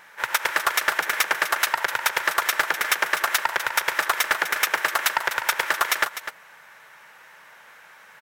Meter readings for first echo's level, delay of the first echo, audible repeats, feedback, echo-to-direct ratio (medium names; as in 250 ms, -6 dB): -11.0 dB, 251 ms, 1, no regular repeats, -11.0 dB